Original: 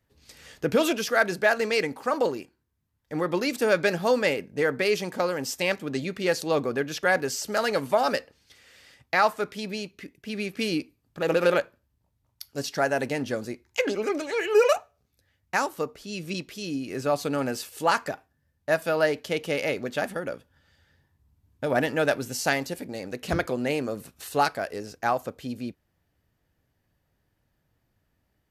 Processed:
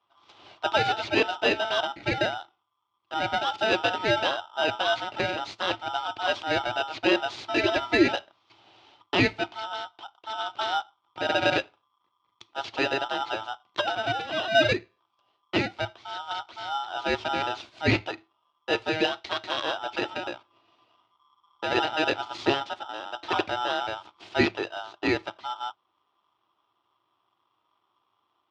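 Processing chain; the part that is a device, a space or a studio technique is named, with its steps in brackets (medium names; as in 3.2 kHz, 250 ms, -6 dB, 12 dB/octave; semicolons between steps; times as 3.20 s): 18.92–19.63 s: tilt shelf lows -6 dB; ring modulator pedal into a guitar cabinet (polarity switched at an audio rate 1.1 kHz; cabinet simulation 84–4000 Hz, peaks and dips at 110 Hz +10 dB, 160 Hz -7 dB, 340 Hz +10 dB, 500 Hz -5 dB, 780 Hz +3 dB, 1.7 kHz -8 dB); 7.47–8.07 s: comb 3 ms, depth 74%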